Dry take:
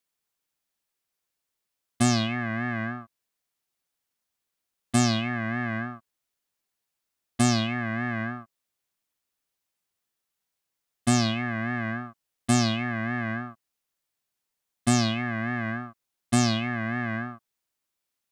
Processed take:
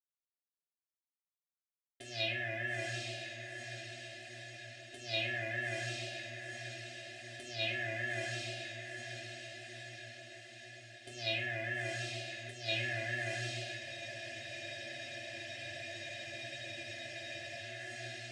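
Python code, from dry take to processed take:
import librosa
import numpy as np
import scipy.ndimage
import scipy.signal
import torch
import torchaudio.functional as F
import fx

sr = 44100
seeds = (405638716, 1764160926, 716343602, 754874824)

p1 = fx.law_mismatch(x, sr, coded='A')
p2 = fx.curve_eq(p1, sr, hz=(150.0, 210.0, 920.0, 1700.0, 3200.0, 8000.0), db=(0, -17, -9, -11, 1, 6))
p3 = p2 + fx.echo_diffused(p2, sr, ms=906, feedback_pct=62, wet_db=-8.5, dry=0)
p4 = fx.over_compress(p3, sr, threshold_db=-29.0, ratio=-0.5)
p5 = fx.vowel_filter(p4, sr, vowel='e')
p6 = fx.peak_eq(p5, sr, hz=340.0, db=5.0, octaves=0.54)
p7 = p6 + 0.92 * np.pad(p6, (int(2.9 * sr / 1000.0), 0))[:len(p6)]
p8 = fx.room_shoebox(p7, sr, seeds[0], volume_m3=50.0, walls='mixed', distance_m=0.64)
p9 = fx.spec_freeze(p8, sr, seeds[1], at_s=13.82, hold_s=3.81)
y = p9 * librosa.db_to_amplitude(8.0)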